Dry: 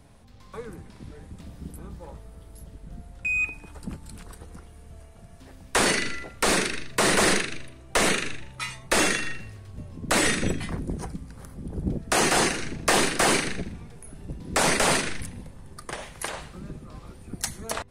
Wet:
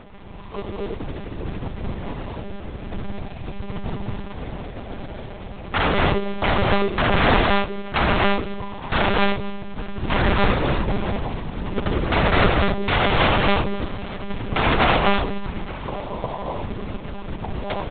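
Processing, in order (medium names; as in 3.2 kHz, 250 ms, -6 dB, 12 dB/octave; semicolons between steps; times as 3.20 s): rattle on loud lows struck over -31 dBFS, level -13 dBFS; elliptic low-pass 1 kHz, stop band 40 dB; band-stop 510 Hz, Q 12; comb 2.9 ms, depth 68%; in parallel at -1.5 dB: compression 6:1, threshold -38 dBFS, peak gain reduction 18.5 dB; on the sum: integer overflow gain 17 dB; companded quantiser 4-bit; on a send: feedback delay 872 ms, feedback 44%, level -20.5 dB; on the sum: gated-style reverb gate 280 ms rising, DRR -0.5 dB; monotone LPC vocoder at 8 kHz 200 Hz; trim +3.5 dB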